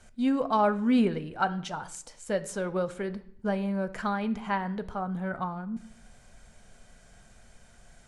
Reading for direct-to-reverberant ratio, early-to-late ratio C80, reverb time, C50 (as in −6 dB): 11.5 dB, 19.5 dB, 0.60 s, 16.5 dB